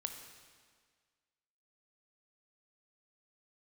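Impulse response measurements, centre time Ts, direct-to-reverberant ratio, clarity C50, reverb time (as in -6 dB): 34 ms, 5.0 dB, 6.0 dB, 1.7 s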